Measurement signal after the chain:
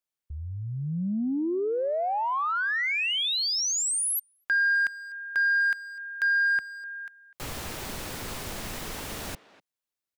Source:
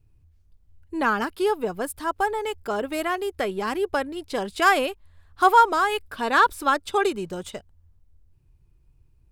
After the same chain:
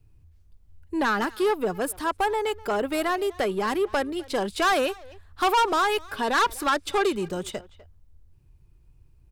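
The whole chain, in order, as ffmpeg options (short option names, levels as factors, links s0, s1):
-filter_complex "[0:a]acrossover=split=180|2400[s0][s1][s2];[s0]alimiter=level_in=3.98:limit=0.0631:level=0:latency=1:release=338,volume=0.251[s3];[s3][s1][s2]amix=inputs=3:normalize=0,asoftclip=type=tanh:threshold=0.0944,asplit=2[s4][s5];[s5]adelay=250,highpass=300,lowpass=3400,asoftclip=type=hard:threshold=0.0316,volume=0.141[s6];[s4][s6]amix=inputs=2:normalize=0,volume=1.41"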